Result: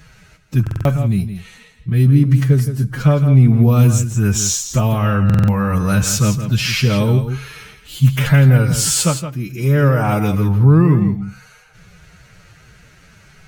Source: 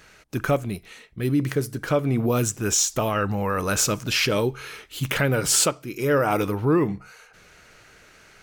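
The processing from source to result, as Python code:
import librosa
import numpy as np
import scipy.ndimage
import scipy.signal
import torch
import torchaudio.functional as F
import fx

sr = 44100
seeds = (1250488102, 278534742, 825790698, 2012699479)

p1 = fx.low_shelf_res(x, sr, hz=240.0, db=10.5, q=1.5)
p2 = fx.stretch_vocoder(p1, sr, factor=1.6)
p3 = p2 + fx.echo_single(p2, sr, ms=167, db=-10.0, dry=0)
p4 = fx.buffer_glitch(p3, sr, at_s=(0.62, 5.25), block=2048, repeats=4)
y = p4 * librosa.db_to_amplitude(2.5)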